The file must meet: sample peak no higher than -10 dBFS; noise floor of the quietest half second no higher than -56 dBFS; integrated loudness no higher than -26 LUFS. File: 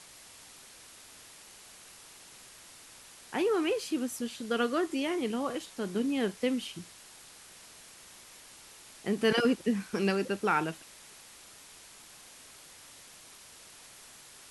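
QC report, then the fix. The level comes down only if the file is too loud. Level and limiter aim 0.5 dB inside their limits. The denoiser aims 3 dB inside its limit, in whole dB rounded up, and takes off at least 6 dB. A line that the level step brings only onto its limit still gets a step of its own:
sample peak -14.0 dBFS: OK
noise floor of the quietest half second -53 dBFS: fail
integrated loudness -31.0 LUFS: OK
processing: denoiser 6 dB, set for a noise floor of -53 dBFS

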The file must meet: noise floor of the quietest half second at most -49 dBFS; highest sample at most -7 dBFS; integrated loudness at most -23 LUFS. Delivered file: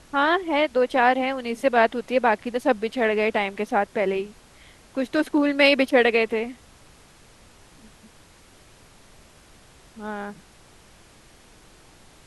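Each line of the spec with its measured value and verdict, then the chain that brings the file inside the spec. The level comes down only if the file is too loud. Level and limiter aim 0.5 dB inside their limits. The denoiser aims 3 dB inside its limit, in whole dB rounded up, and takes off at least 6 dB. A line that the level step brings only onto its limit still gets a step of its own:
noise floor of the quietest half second -52 dBFS: OK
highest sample -5.5 dBFS: fail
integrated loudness -22.0 LUFS: fail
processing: gain -1.5 dB; limiter -7.5 dBFS

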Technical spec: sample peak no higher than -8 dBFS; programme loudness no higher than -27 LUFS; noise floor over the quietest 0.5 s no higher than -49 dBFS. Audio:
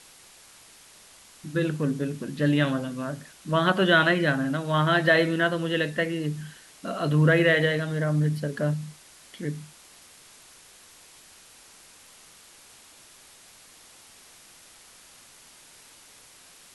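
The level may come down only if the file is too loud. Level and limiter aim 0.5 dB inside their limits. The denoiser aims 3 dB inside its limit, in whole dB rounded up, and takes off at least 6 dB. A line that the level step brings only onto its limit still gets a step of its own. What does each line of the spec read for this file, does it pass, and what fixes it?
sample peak -7.5 dBFS: fail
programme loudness -24.5 LUFS: fail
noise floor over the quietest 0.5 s -52 dBFS: OK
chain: gain -3 dB

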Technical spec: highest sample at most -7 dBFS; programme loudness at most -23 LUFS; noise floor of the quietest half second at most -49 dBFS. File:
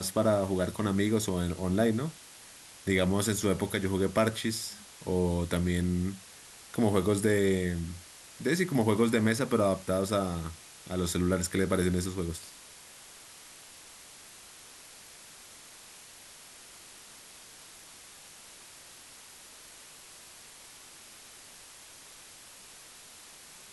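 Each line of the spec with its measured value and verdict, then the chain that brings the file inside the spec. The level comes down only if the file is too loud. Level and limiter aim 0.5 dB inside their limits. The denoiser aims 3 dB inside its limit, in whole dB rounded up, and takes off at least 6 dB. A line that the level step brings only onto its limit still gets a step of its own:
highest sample -11.5 dBFS: OK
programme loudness -29.5 LUFS: OK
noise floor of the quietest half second -51 dBFS: OK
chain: none

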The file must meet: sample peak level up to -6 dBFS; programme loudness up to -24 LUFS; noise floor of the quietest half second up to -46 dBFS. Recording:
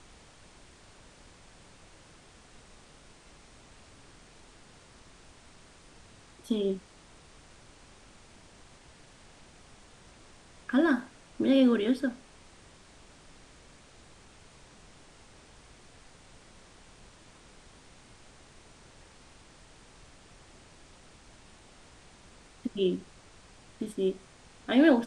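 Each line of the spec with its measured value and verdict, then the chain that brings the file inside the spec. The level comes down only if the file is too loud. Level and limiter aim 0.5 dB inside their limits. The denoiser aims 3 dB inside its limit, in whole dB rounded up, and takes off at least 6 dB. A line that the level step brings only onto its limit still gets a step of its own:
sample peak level -10.5 dBFS: OK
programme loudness -28.5 LUFS: OK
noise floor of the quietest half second -55 dBFS: OK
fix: none

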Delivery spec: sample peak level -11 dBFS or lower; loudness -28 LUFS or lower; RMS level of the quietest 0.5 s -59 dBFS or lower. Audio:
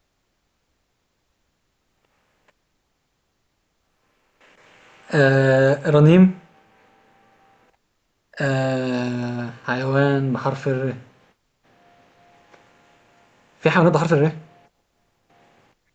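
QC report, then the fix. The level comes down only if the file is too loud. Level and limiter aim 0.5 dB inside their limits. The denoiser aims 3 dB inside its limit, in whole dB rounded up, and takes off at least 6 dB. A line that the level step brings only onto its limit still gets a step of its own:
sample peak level -3.5 dBFS: fail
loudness -19.0 LUFS: fail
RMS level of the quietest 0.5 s -71 dBFS: OK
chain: gain -9.5 dB

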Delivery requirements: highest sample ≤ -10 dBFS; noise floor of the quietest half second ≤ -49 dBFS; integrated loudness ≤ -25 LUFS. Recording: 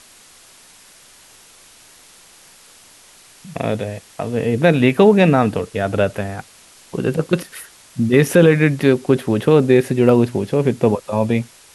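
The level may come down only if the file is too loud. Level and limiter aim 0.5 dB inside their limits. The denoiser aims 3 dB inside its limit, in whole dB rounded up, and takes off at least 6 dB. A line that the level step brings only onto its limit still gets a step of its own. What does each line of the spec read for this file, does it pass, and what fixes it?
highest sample -1.5 dBFS: fail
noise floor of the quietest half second -47 dBFS: fail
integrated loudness -16.5 LUFS: fail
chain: gain -9 dB

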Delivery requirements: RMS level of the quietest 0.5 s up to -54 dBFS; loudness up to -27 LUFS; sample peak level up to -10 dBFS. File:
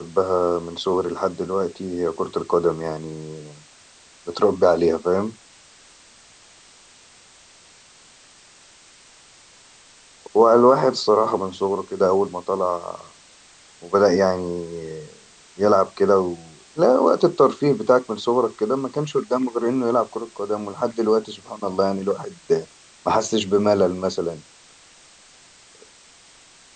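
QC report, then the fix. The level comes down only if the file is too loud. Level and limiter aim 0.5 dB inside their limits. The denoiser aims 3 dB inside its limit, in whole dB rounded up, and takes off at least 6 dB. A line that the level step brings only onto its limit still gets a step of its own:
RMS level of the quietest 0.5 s -50 dBFS: fail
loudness -21.0 LUFS: fail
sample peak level -2.5 dBFS: fail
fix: gain -6.5 dB; limiter -10.5 dBFS

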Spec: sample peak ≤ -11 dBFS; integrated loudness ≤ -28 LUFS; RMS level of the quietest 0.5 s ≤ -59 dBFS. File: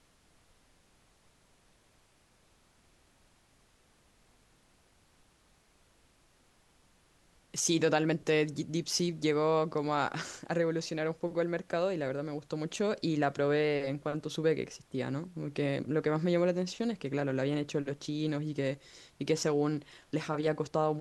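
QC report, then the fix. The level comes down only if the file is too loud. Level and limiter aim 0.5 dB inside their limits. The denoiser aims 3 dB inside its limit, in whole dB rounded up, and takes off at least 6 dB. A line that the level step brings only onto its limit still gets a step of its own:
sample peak -14.5 dBFS: OK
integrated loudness -32.0 LUFS: OK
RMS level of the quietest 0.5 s -67 dBFS: OK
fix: none

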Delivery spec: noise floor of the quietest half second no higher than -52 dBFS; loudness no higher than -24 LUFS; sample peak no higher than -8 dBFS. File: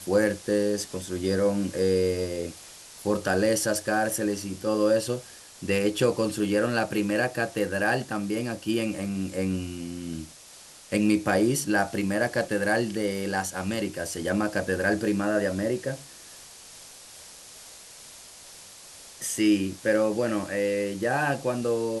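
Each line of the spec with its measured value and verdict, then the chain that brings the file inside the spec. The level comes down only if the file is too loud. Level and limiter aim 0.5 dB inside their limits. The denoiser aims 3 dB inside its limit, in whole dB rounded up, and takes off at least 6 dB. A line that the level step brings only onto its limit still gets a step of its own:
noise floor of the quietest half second -49 dBFS: fail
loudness -26.5 LUFS: OK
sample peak -9.5 dBFS: OK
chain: denoiser 6 dB, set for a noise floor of -49 dBFS

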